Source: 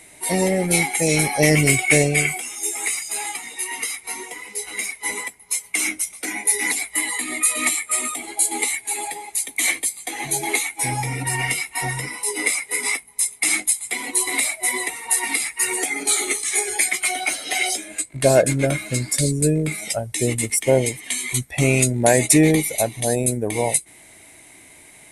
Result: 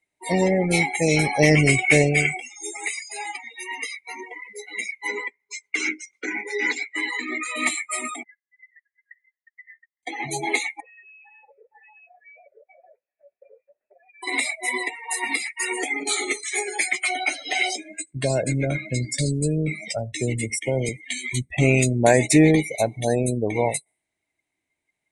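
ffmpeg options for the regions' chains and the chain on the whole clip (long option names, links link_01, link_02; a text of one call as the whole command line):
ffmpeg -i in.wav -filter_complex "[0:a]asettb=1/sr,asplit=3[link_01][link_02][link_03];[link_01]atrim=end=5.074[link_04];[link_02]atrim=start=5.07:end=7.56,asetpts=PTS-STARTPTS,afade=type=in:duration=0.004:curve=qsin,afade=type=out:start_time=2.486:duration=0.004:curve=qsin,asoftclip=type=hard:threshold=-15.5dB,highpass=120,equalizer=frequency=170:width_type=q:width=4:gain=-8,equalizer=frequency=400:width_type=q:width=4:gain=7,equalizer=frequency=700:width_type=q:width=4:gain=-6,equalizer=frequency=1500:width_type=q:width=4:gain=6,lowpass=frequency=7800:width=0.5412,lowpass=frequency=7800:width=1.3066[link_05];[link_03]atrim=start=7.556[link_06];[link_04][link_05]acrossfade=duration=0.004:curve1=hsin:curve2=qsin[link_07];[link_07][link_06]acrossfade=duration=0.004:curve1=qsin:curve2=hsin,asettb=1/sr,asplit=3[link_08][link_09][link_10];[link_08]atrim=end=8.234[link_11];[link_09]atrim=start=8.23:end=10.03,asetpts=PTS-STARTPTS,afade=type=in:duration=0.004:curve=qsin,afade=type=out:start_time=1.796:duration=0.004:curve=qsin,aemphasis=mode=production:type=50kf,acompressor=threshold=-23dB:ratio=5:attack=3.2:release=140:knee=1:detection=peak,asuperpass=centerf=1800:order=12:qfactor=4.1[link_12];[link_10]atrim=start=10.026[link_13];[link_11][link_12]acrossfade=duration=0.004:curve1=hsin:curve2=qsin[link_14];[link_14][link_13]acrossfade=duration=0.004:curve1=qsin:curve2=hsin,asettb=1/sr,asplit=3[link_15][link_16][link_17];[link_15]atrim=end=10.804[link_18];[link_16]atrim=start=10.8:end=14.23,asetpts=PTS-STARTPTS,afade=type=in:duration=0.004:curve=qsin,afade=type=out:start_time=3.426:duration=0.004:curve=qsin,lowpass=frequency=2300:width_type=q:width=0.5098,lowpass=frequency=2300:width_type=q:width=0.6013,lowpass=frequency=2300:width_type=q:width=0.9,lowpass=frequency=2300:width_type=q:width=2.563,afreqshift=-2700,acrossover=split=1700[link_19][link_20];[link_19]aeval=exprs='val(0)*(1-0.5/2+0.5/2*cos(2*PI*4.4*n/s))':channel_layout=same[link_21];[link_20]aeval=exprs='val(0)*(1-0.5/2-0.5/2*cos(2*PI*4.4*n/s))':channel_layout=same[link_22];[link_21][link_22]amix=inputs=2:normalize=0,acompressor=threshold=-42dB:ratio=12:attack=3.2:release=140:knee=1:detection=peak[link_23];[link_17]atrim=start=14.226[link_24];[link_18][link_23]acrossfade=duration=0.004:curve1=hsin:curve2=qsin[link_25];[link_25][link_24]acrossfade=duration=0.004:curve1=qsin:curve2=hsin,asettb=1/sr,asplit=3[link_26][link_27][link_28];[link_26]atrim=end=17.844[link_29];[link_27]atrim=start=17.84:end=20.89,asetpts=PTS-STARTPTS,afade=type=in:duration=0.004:curve=qsin,afade=type=out:start_time=3.046:duration=0.004:curve=qsin,acrossover=split=130|3000[link_30][link_31][link_32];[link_31]acompressor=threshold=-22dB:ratio=3:attack=3.2:release=140:knee=2.83:detection=peak[link_33];[link_30][link_33][link_32]amix=inputs=3:normalize=0,aecho=1:1:83:0.0794,atrim=end_sample=134505[link_34];[link_28]atrim=start=20.886[link_35];[link_29][link_34]acrossfade=duration=0.004:curve1=hsin:curve2=qsin[link_36];[link_36][link_35]acrossfade=duration=0.004:curve1=qsin:curve2=hsin,lowpass=6400,afftdn=noise_reduction=33:noise_floor=-32" out.wav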